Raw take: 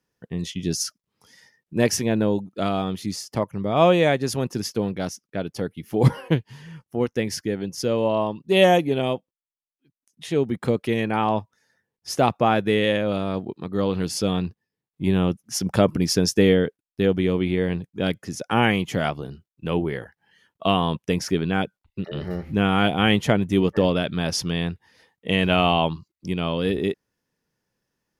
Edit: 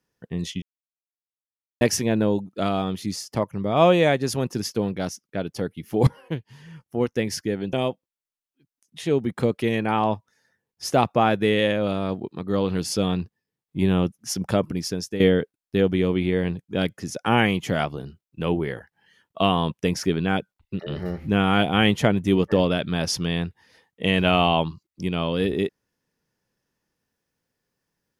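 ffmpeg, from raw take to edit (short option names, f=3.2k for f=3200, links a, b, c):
-filter_complex "[0:a]asplit=6[a][b][c][d][e][f];[a]atrim=end=0.62,asetpts=PTS-STARTPTS,afade=t=out:st=0.616:d=0.004:c=hsin[g];[b]atrim=start=0.62:end=1.81,asetpts=PTS-STARTPTS,volume=0[h];[c]atrim=start=1.81:end=6.07,asetpts=PTS-STARTPTS,afade=t=in:d=0.004:c=hsin,afade=t=out:st=4.256:d=0.004:c=hsin:silence=0.141254[i];[d]atrim=start=6.07:end=7.732,asetpts=PTS-STARTPTS,afade=t=in:d=0.92:silence=0.141254[j];[e]atrim=start=8.978:end=16.45,asetpts=PTS-STARTPTS,afade=t=out:st=6.322:d=1.15:silence=0.223872[k];[f]atrim=start=16.45,asetpts=PTS-STARTPTS,afade=t=in:d=0.004:c=hsin:silence=0.223872[l];[g][h][i][j]concat=n=4:v=0:a=1[m];[k][l]concat=n=2:v=0:a=1[n];[m][n]acrossfade=d=0.004:c1=hsin:c2=hsin"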